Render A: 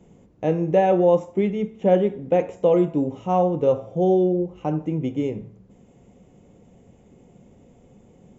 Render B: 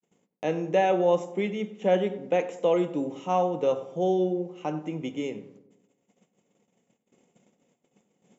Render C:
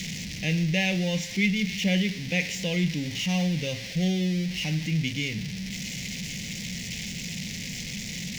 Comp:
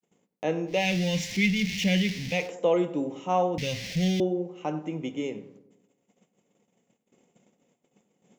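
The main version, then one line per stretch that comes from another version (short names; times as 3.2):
B
0.78–2.4 from C, crossfade 0.24 s
3.58–4.2 from C
not used: A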